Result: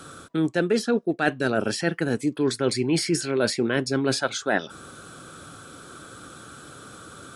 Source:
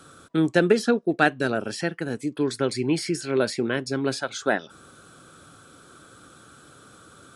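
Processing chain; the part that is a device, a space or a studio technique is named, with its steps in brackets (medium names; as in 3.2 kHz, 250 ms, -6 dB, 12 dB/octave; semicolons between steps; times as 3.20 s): compression on the reversed sound (reverse; compression 10:1, threshold -25 dBFS, peak gain reduction 13 dB; reverse); trim +6.5 dB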